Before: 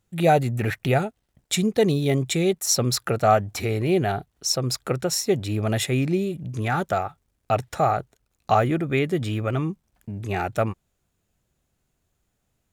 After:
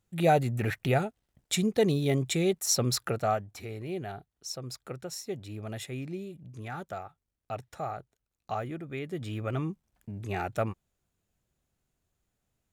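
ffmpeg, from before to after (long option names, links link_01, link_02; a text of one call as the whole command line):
ffmpeg -i in.wav -af "volume=3dB,afade=type=out:start_time=2.98:duration=0.49:silence=0.334965,afade=type=in:start_time=9:duration=0.58:silence=0.398107" out.wav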